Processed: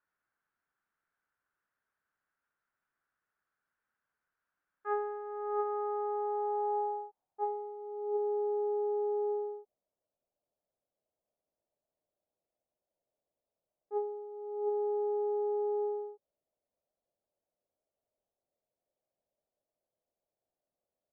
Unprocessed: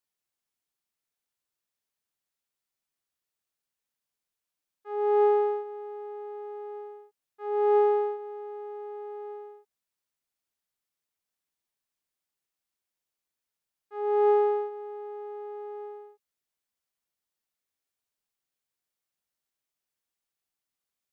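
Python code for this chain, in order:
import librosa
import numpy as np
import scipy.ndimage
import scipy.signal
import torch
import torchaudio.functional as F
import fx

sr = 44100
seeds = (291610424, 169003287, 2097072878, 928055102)

y = fx.filter_sweep_lowpass(x, sr, from_hz=1500.0, to_hz=610.0, start_s=5.12, end_s=8.12, q=4.7)
y = fx.over_compress(y, sr, threshold_db=-31.0, ratio=-1.0)
y = F.gain(torch.from_numpy(y), -3.5).numpy()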